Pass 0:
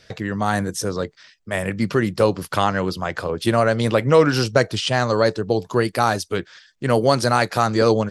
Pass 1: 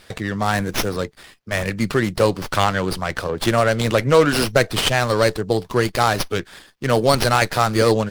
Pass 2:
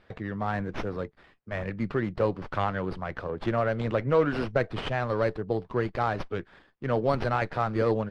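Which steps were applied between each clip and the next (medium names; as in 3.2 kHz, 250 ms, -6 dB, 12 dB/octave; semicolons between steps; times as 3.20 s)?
treble shelf 3 kHz +11 dB; sliding maximum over 5 samples
Bessel low-pass 1.6 kHz, order 2; trim -8.5 dB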